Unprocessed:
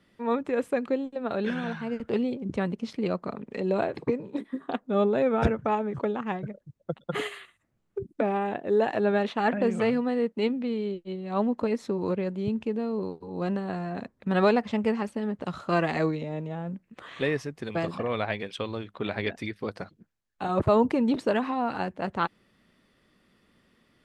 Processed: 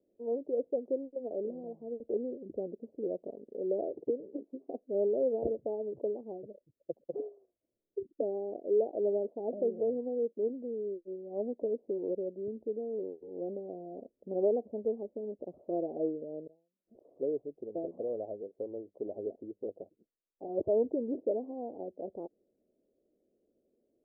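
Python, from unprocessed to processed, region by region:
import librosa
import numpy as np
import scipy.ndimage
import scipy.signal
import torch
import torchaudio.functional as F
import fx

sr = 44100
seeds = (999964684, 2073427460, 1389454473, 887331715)

y = fx.chain(x, sr, fx.zero_step(step_db=-49.0),
    fx.gate_flip(shuts_db=-35.0, range_db=-40),
    fx.sustainer(db_per_s=120.0), at=(16.47, 17.05))
y = scipy.signal.sosfilt(scipy.signal.butter(8, 640.0, 'lowpass', fs=sr, output='sos'), y)
y = fx.low_shelf_res(y, sr, hz=240.0, db=-13.5, q=1.5)
y = y * librosa.db_to_amplitude(-6.5)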